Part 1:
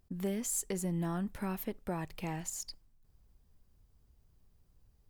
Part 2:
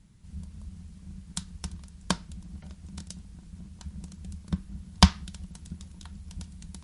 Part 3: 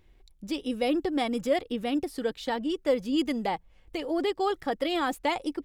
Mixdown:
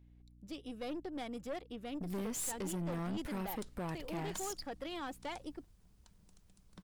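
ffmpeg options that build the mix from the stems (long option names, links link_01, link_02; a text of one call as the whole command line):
ffmpeg -i stem1.wav -i stem2.wav -i stem3.wav -filter_complex "[0:a]adelay=1900,volume=1.5dB[link_01];[1:a]highpass=330,adelay=2250,volume=-14.5dB[link_02];[2:a]aeval=exprs='val(0)+0.00501*(sin(2*PI*60*n/s)+sin(2*PI*2*60*n/s)/2+sin(2*PI*3*60*n/s)/3+sin(2*PI*4*60*n/s)/4+sin(2*PI*5*60*n/s)/5)':channel_layout=same,volume=-12dB[link_03];[link_01][link_02][link_03]amix=inputs=3:normalize=0,aeval=exprs='(tanh(56.2*val(0)+0.4)-tanh(0.4))/56.2':channel_layout=same" out.wav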